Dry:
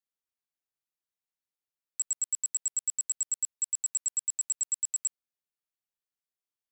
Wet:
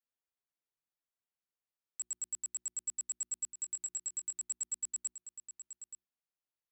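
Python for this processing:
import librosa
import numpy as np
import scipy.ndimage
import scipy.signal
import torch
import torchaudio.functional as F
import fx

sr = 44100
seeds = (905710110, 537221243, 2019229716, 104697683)

y = fx.high_shelf(x, sr, hz=3200.0, db=-7.5)
y = fx.hum_notches(y, sr, base_hz=60, count=6)
y = y + 10.0 ** (-10.0 / 20.0) * np.pad(y, (int(876 * sr / 1000.0), 0))[:len(y)]
y = F.gain(torch.from_numpy(y), -2.0).numpy()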